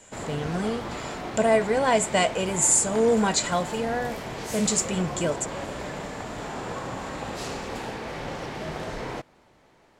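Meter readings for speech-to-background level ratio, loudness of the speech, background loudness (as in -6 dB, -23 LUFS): 9.5 dB, -24.5 LUFS, -34.0 LUFS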